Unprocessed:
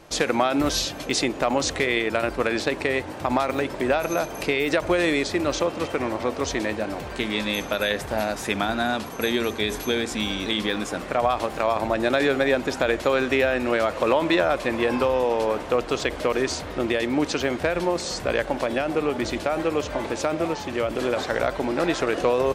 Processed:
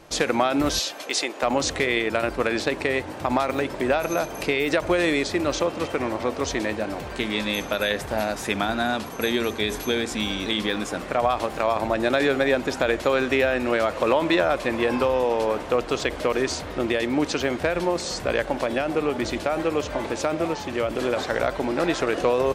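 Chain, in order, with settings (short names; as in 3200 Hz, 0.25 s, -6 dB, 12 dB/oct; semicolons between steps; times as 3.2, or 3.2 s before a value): 0.79–1.43 HPF 490 Hz 12 dB/oct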